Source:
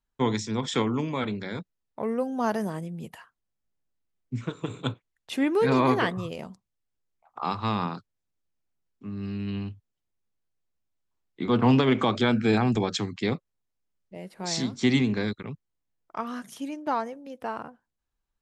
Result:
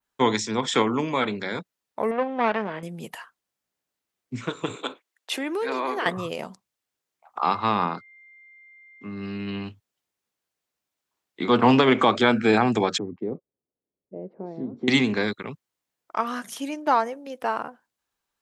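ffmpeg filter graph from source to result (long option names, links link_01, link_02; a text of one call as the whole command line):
ffmpeg -i in.wav -filter_complex "[0:a]asettb=1/sr,asplit=3[link_01][link_02][link_03];[link_01]atrim=end=2.114[link_04];[link_02]atrim=start=2.11:end=2.83,asetpts=PTS-STARTPTS,afade=type=in:duration=0.004:curve=qsin,afade=type=out:start_time=0.716:duration=0.004:curve=qsin,aeval=exprs='if(lt(val(0),0),0.251*val(0),val(0))':channel_layout=same,lowpass=frequency=2900:width=0.5412,lowpass=frequency=2900:width=1.3066,highshelf=frequency=2000:gain=9.5[link_05];[link_03]atrim=start=2.826[link_06];[link_04][link_05]acrossfade=duration=0.004:curve1=hsin:curve2=qsin[link_07];[link_07][link_06]acrossfade=duration=0.004:curve1=qsin:curve2=hsin,asettb=1/sr,asplit=3[link_08][link_09][link_10];[link_08]atrim=end=4.764[link_11];[link_09]atrim=start=4.76:end=6.06,asetpts=PTS-STARTPTS,afade=type=in:duration=0.004:curve=qsin,afade=type=out:start_time=1.296:duration=0.004:curve=qsin,highpass=frequency=270:width=0.5412,highpass=frequency=270:width=1.3066,acompressor=threshold=-30dB:ratio=5:attack=3.2:release=140:knee=1:detection=peak[link_12];[link_10]atrim=start=6.056[link_13];[link_11][link_12]acrossfade=duration=0.004:curve1=hsin:curve2=qsin[link_14];[link_14][link_13]acrossfade=duration=0.004:curve1=qsin:curve2=hsin,asettb=1/sr,asplit=3[link_15][link_16][link_17];[link_15]atrim=end=7.444[link_18];[link_16]atrim=start=7.44:end=9.64,asetpts=PTS-STARTPTS,afade=type=in:duration=0.004:curve=qsin,afade=type=out:start_time=2.196:duration=0.004:curve=qsin,lowpass=frequency=3200:poles=1,aeval=exprs='val(0)+0.00141*sin(2*PI*2100*n/s)':channel_layout=same[link_19];[link_17]atrim=start=9.636[link_20];[link_18][link_19]acrossfade=duration=0.004:curve1=hsin:curve2=qsin[link_21];[link_21][link_20]acrossfade=duration=0.004:curve1=qsin:curve2=hsin,asettb=1/sr,asplit=3[link_22][link_23][link_24];[link_22]atrim=end=12.984[link_25];[link_23]atrim=start=12.98:end=14.88,asetpts=PTS-STARTPTS,afade=type=in:duration=0.004:curve=qsin,afade=type=out:start_time=1.896:duration=0.004:curve=qsin,acompressor=threshold=-33dB:ratio=2.5:attack=3.2:release=140:knee=1:detection=peak,lowpass=frequency=420:width_type=q:width=1.5[link_26];[link_24]atrim=start=14.876[link_27];[link_25][link_26]acrossfade=duration=0.004:curve1=hsin:curve2=qsin[link_28];[link_28][link_27]acrossfade=duration=0.004:curve1=qsin:curve2=hsin,highpass=frequency=490:poles=1,adynamicequalizer=threshold=0.00398:dfrequency=4900:dqfactor=0.71:tfrequency=4900:tqfactor=0.71:attack=5:release=100:ratio=0.375:range=3.5:mode=cutabove:tftype=bell,volume=8.5dB" out.wav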